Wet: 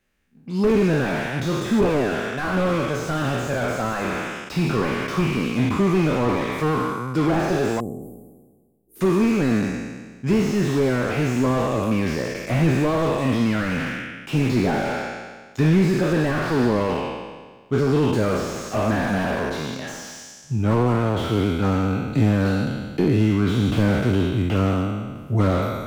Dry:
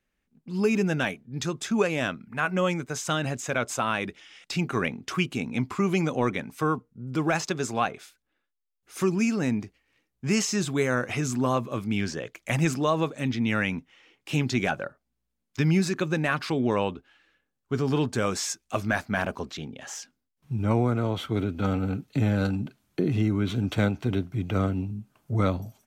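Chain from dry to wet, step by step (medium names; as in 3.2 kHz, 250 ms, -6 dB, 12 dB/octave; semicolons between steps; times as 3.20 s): spectral sustain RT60 1.48 s; 7.80–9.01 s: inverse Chebyshev band-stop 1.5–4 kHz, stop band 80 dB; slew-rate limiter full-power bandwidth 41 Hz; trim +5 dB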